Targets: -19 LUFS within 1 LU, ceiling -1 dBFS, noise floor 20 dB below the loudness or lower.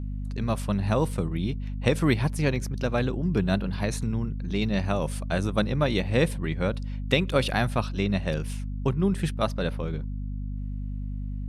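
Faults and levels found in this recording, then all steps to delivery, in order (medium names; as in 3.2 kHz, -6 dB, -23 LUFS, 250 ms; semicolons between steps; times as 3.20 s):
hum 50 Hz; highest harmonic 250 Hz; hum level -29 dBFS; loudness -27.5 LUFS; peak level -8.5 dBFS; loudness target -19.0 LUFS
-> de-hum 50 Hz, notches 5; trim +8.5 dB; peak limiter -1 dBFS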